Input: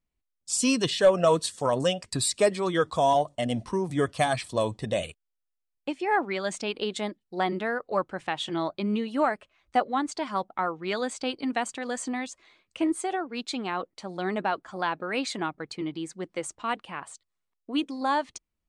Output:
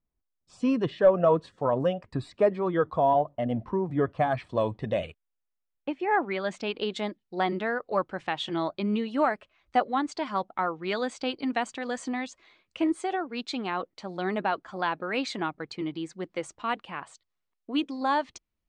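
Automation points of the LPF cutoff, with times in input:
4.21 s 1400 Hz
4.63 s 2400 Hz
6.01 s 2400 Hz
7.08 s 5300 Hz

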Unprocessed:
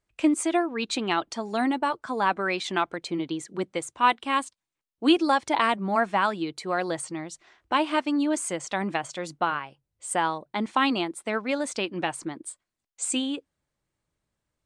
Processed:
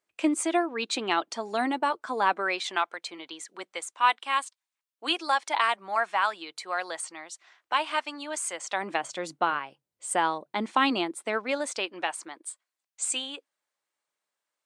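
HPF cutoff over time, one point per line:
2.27 s 320 Hz
2.92 s 810 Hz
8.51 s 810 Hz
9.14 s 230 Hz
11.08 s 230 Hz
12.17 s 690 Hz

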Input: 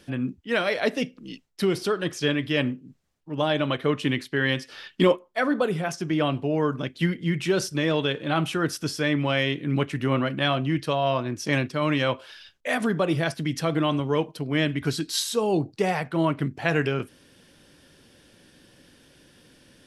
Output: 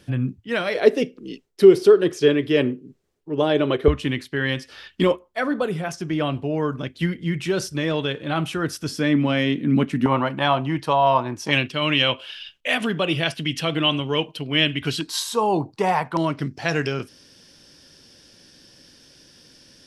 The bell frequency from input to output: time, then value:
bell +15 dB 0.6 oct
110 Hz
from 0.75 s 400 Hz
from 3.88 s 68 Hz
from 8.92 s 230 Hz
from 10.06 s 900 Hz
from 11.51 s 2900 Hz
from 15.01 s 960 Hz
from 16.17 s 5300 Hz

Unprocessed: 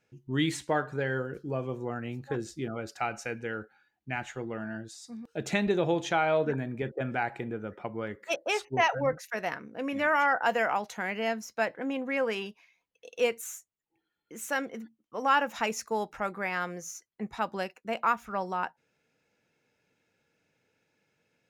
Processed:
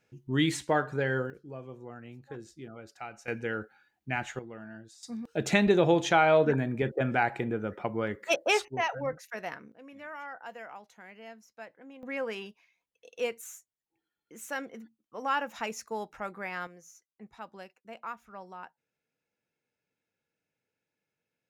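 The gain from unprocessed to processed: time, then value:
+1.5 dB
from 1.3 s -10 dB
from 3.28 s +2 dB
from 4.39 s -8 dB
from 5.03 s +4 dB
from 8.68 s -5 dB
from 9.72 s -17 dB
from 12.03 s -5 dB
from 16.67 s -13 dB

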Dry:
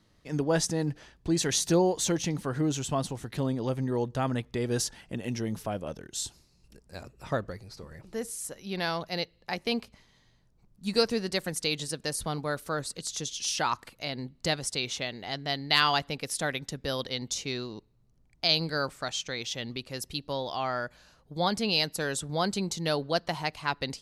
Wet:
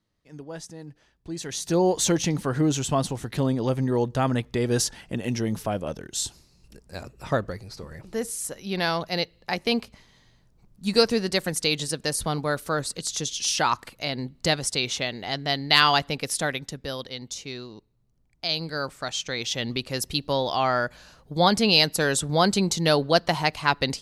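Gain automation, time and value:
0.91 s -12 dB
1.56 s -5 dB
1.91 s +5.5 dB
16.31 s +5.5 dB
17.08 s -2.5 dB
18.46 s -2.5 dB
19.72 s +8 dB

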